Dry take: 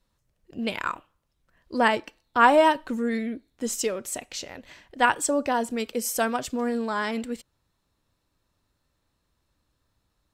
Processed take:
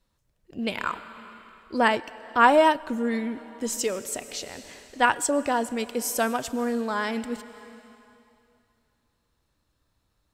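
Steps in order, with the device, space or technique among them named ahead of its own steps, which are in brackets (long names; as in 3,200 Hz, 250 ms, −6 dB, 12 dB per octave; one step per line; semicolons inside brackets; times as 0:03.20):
compressed reverb return (on a send at −9 dB: convolution reverb RT60 2.5 s, pre-delay 95 ms + downward compressor 10 to 1, threshold −30 dBFS, peak gain reduction 16 dB)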